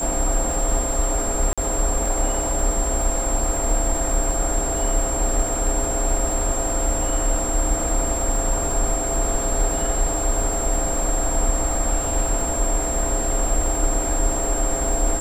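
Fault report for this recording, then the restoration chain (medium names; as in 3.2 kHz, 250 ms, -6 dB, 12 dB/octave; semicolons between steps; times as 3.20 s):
crackle 55 per s -28 dBFS
whine 7.5 kHz -25 dBFS
1.53–1.58 s: dropout 46 ms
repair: de-click; band-stop 7.5 kHz, Q 30; interpolate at 1.53 s, 46 ms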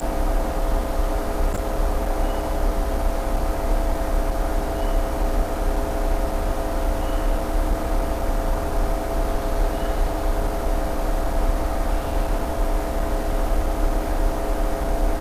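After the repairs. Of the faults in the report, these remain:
nothing left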